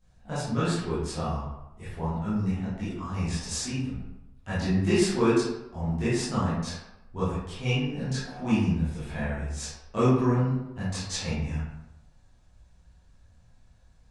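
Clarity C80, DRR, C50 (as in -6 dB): 3.0 dB, -13.0 dB, -1.0 dB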